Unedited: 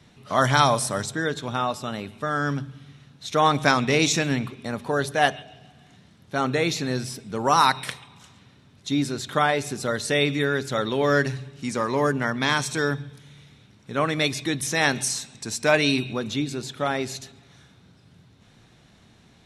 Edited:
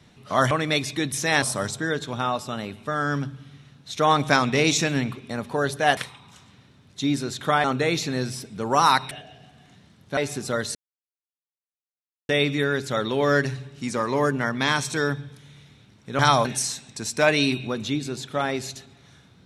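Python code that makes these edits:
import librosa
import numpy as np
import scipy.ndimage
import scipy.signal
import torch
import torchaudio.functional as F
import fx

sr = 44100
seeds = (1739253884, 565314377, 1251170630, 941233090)

y = fx.edit(x, sr, fx.swap(start_s=0.51, length_s=0.26, other_s=14.0, other_length_s=0.91),
    fx.swap(start_s=5.32, length_s=1.06, other_s=7.85, other_length_s=1.67),
    fx.insert_silence(at_s=10.1, length_s=1.54), tone=tone)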